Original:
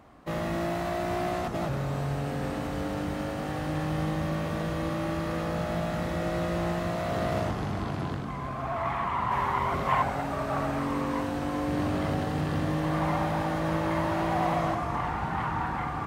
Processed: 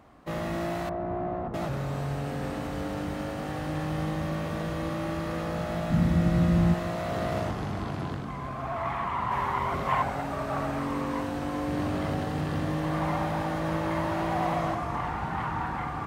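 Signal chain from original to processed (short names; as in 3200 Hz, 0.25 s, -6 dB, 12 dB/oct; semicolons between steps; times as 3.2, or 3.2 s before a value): 0.89–1.54 LPF 1000 Hz 12 dB/oct; 5.9–6.74 resonant low shelf 300 Hz +9.5 dB, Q 1.5; gain -1 dB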